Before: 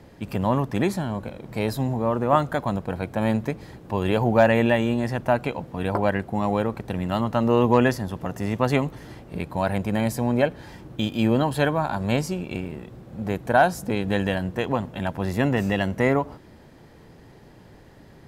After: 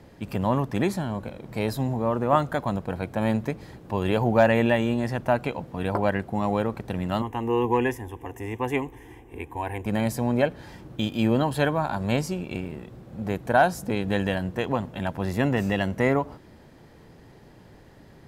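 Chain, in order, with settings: 7.22–9.86 fixed phaser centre 900 Hz, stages 8; gain -1.5 dB

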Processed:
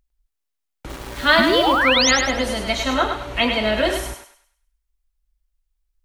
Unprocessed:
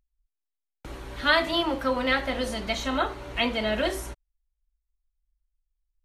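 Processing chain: 1.38–2.11 painted sound rise 200–7100 Hz -25 dBFS; 0.89–1.79 sample gate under -38 dBFS; thinning echo 0.102 s, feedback 36%, high-pass 640 Hz, level -5 dB; gain +6 dB

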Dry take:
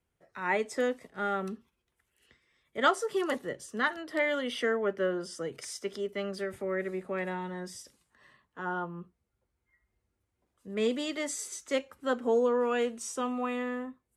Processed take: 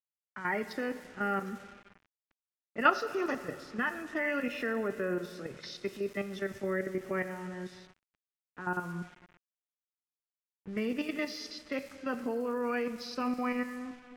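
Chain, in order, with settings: nonlinear frequency compression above 1900 Hz 1.5:1; level quantiser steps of 11 dB; plate-style reverb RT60 2.5 s, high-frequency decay 0.9×, DRR 11 dB; sample gate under -52 dBFS; low-pass opened by the level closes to 2400 Hz, open at -35 dBFS; graphic EQ 500/1000/4000 Hz -7/-4/-7 dB; gain +6 dB

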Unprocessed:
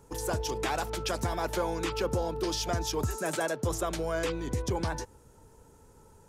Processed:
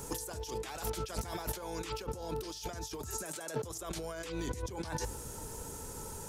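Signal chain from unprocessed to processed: high shelf 3300 Hz +11 dB; notches 50/100 Hz; negative-ratio compressor -41 dBFS, ratio -1; gain +1 dB

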